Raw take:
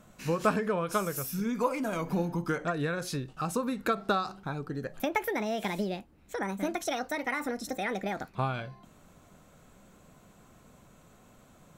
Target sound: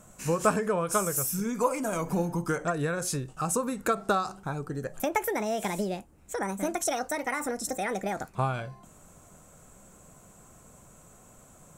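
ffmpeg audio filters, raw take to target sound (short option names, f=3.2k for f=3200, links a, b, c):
-af "equalizer=f=250:t=o:w=1:g=-4,equalizer=f=2k:t=o:w=1:g=-3,equalizer=f=4k:t=o:w=1:g=-8,equalizer=f=8k:t=o:w=1:g=11,volume=3.5dB"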